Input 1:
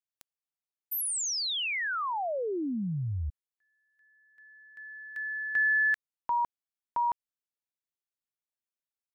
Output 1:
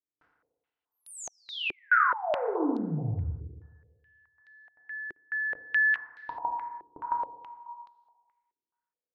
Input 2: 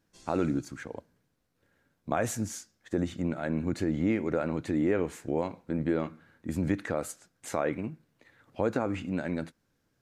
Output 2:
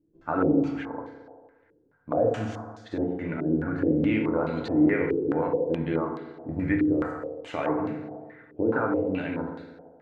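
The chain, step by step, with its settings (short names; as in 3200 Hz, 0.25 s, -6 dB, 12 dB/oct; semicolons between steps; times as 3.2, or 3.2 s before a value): FDN reverb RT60 1.6 s, low-frequency decay 0.75×, high-frequency decay 0.5×, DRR -1 dB; stepped low-pass 4.7 Hz 370–4100 Hz; gain -3 dB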